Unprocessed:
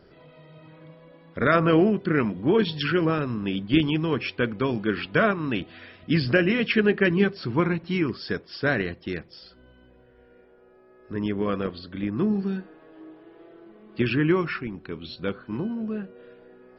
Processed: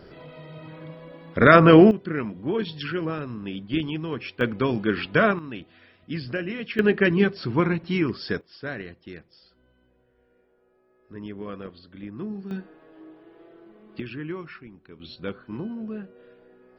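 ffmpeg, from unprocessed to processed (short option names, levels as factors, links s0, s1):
-af "asetnsamples=n=441:p=0,asendcmd='1.91 volume volume -5.5dB;4.41 volume volume 1.5dB;5.39 volume volume -9dB;6.79 volume volume 1dB;8.41 volume volume -9.5dB;12.51 volume volume -1.5dB;14 volume volume -12dB;15 volume volume -3.5dB',volume=2.24"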